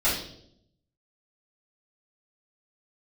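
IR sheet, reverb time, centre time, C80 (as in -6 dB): 0.70 s, 42 ms, 8.0 dB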